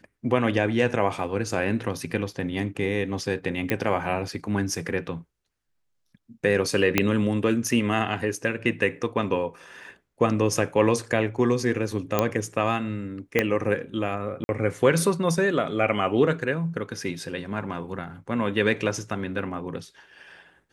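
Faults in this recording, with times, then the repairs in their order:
0:03.70: click −11 dBFS
0:06.98: click −4 dBFS
0:12.19: click −7 dBFS
0:13.39: click −7 dBFS
0:14.44–0:14.49: drop-out 51 ms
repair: click removal
repair the gap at 0:14.44, 51 ms

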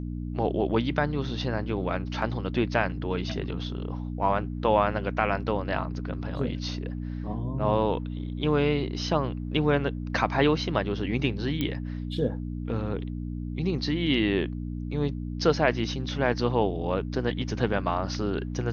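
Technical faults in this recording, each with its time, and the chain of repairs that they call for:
mains hum 60 Hz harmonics 5 −33 dBFS
0:11.61: click −15 dBFS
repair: click removal
hum removal 60 Hz, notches 5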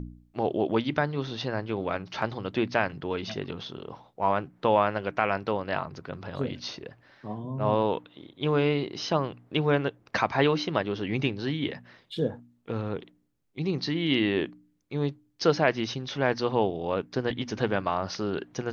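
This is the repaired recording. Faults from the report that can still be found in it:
none of them is left

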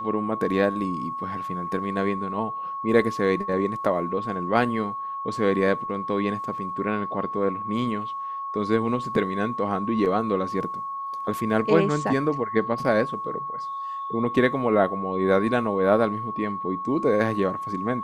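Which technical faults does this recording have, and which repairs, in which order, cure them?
whistle 1,100 Hz −29 dBFS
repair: notch filter 1,100 Hz, Q 30

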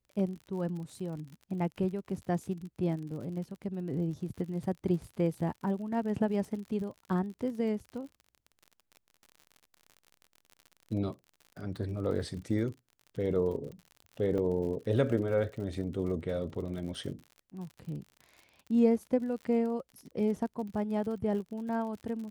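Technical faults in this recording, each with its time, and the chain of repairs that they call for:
surface crackle 57 per second −41 dBFS
0:14.38: drop-out 3.7 ms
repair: click removal
repair the gap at 0:14.38, 3.7 ms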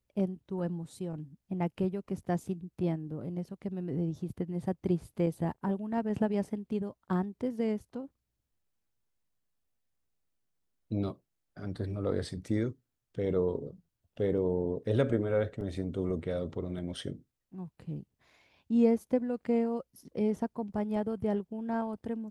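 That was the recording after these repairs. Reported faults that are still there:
none of them is left

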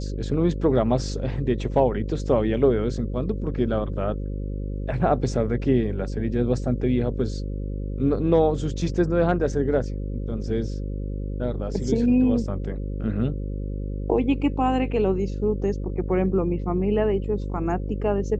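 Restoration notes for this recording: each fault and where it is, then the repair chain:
mains buzz 50 Hz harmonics 11 −29 dBFS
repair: hum removal 50 Hz, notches 11

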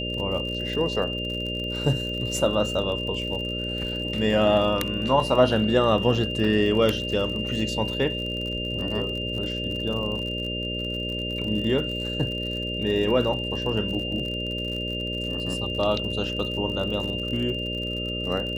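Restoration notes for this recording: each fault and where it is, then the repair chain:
mains buzz 60 Hz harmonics 10 −32 dBFS
surface crackle 55 per second −32 dBFS
whistle 2,800 Hz −30 dBFS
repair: click removal
hum removal 60 Hz, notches 10
notch filter 2,800 Hz, Q 30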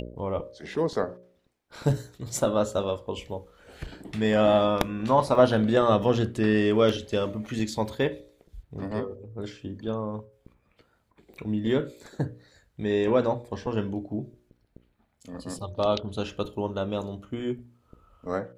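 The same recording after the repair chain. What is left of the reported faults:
none of them is left

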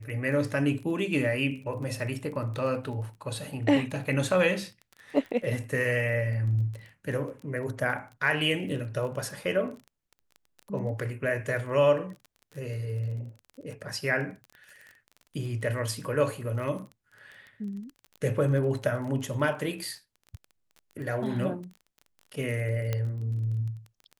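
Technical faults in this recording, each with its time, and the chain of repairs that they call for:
surface crackle 20 per second −37 dBFS
0:22.93: click −16 dBFS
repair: click removal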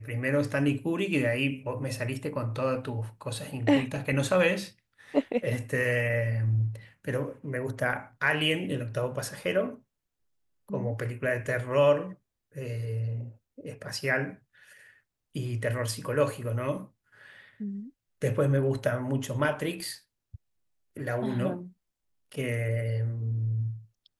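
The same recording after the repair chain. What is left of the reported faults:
none of them is left

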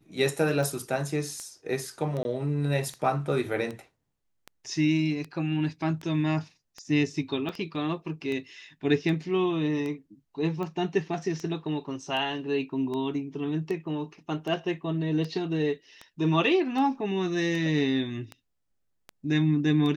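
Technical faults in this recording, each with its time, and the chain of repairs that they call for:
scratch tick 78 rpm
0:02.23–0:02.25: drop-out 20 ms
0:07.49: drop-out 3.4 ms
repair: click removal
repair the gap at 0:02.23, 20 ms
repair the gap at 0:07.49, 3.4 ms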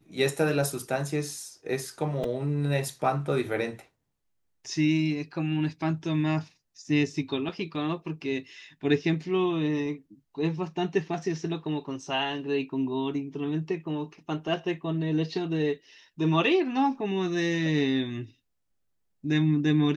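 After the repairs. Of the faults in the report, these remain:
none of them is left

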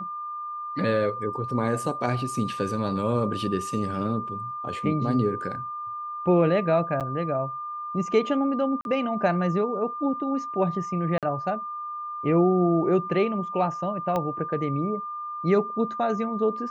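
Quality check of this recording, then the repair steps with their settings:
whistle 1,200 Hz −31 dBFS
0:07.00–0:07.01: drop-out 7.6 ms
0:08.81–0:08.85: drop-out 41 ms
0:11.18–0:11.23: drop-out 47 ms
0:14.16: click −15 dBFS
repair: click removal
notch filter 1,200 Hz, Q 30
repair the gap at 0:07.00, 7.6 ms
repair the gap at 0:08.81, 41 ms
repair the gap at 0:11.18, 47 ms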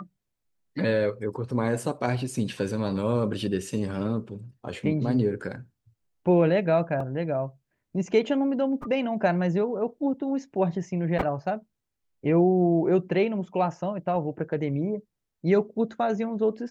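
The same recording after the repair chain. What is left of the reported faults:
0:14.16: click

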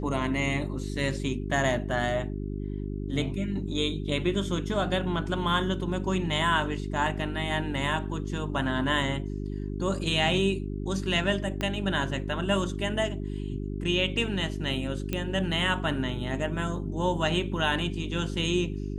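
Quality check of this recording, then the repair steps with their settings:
mains hum 50 Hz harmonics 8 −33 dBFS
0:11.61: click −16 dBFS
0:15.13: click −15 dBFS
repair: click removal
hum removal 50 Hz, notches 8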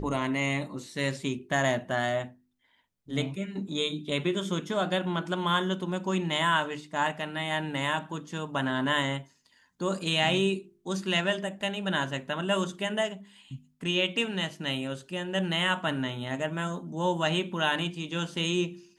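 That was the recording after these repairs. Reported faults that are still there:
0:11.61: click

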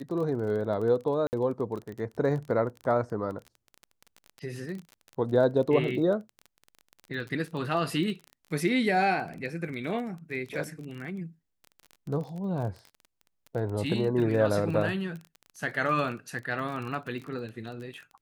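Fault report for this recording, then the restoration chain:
surface crackle 23 per second −35 dBFS
0:01.27–0:01.33: drop-out 59 ms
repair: click removal
repair the gap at 0:01.27, 59 ms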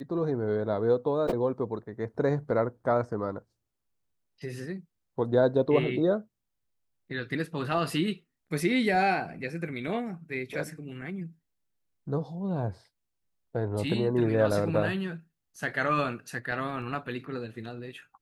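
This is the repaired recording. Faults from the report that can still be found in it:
none of them is left

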